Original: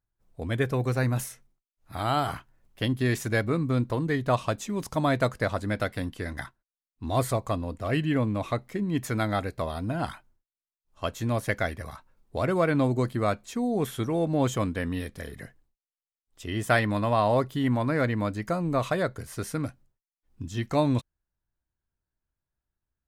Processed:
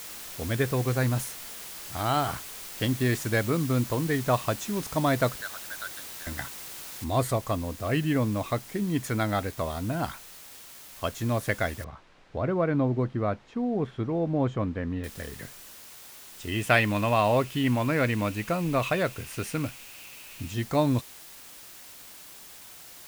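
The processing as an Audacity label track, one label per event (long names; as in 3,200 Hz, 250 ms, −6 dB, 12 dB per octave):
5.410000	6.270000	pair of resonant band-passes 2,400 Hz, apart 1.3 octaves
7.040000	7.040000	noise floor change −41 dB −47 dB
11.840000	15.040000	head-to-tape spacing loss at 10 kHz 34 dB
16.520000	20.540000	parametric band 2,600 Hz +12 dB 0.4 octaves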